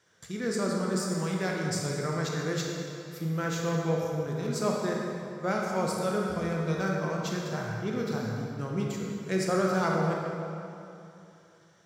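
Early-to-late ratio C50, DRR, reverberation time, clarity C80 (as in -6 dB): -0.5 dB, -2.0 dB, 2.8 s, 1.0 dB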